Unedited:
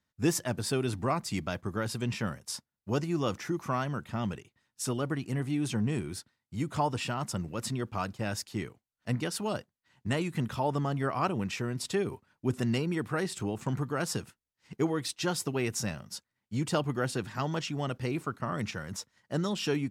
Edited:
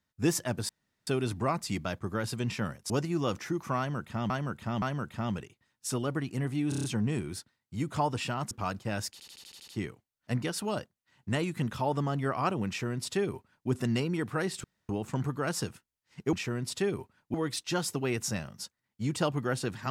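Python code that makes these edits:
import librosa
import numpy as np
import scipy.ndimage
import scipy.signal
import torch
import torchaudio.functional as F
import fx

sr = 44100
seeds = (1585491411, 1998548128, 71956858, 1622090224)

y = fx.edit(x, sr, fx.insert_room_tone(at_s=0.69, length_s=0.38),
    fx.cut(start_s=2.52, length_s=0.37),
    fx.repeat(start_s=3.77, length_s=0.52, count=3),
    fx.stutter(start_s=5.64, slice_s=0.03, count=6),
    fx.cut(start_s=7.31, length_s=0.54),
    fx.stutter(start_s=8.46, slice_s=0.08, count=8),
    fx.duplicate(start_s=11.46, length_s=1.01, to_s=14.86),
    fx.insert_room_tone(at_s=13.42, length_s=0.25), tone=tone)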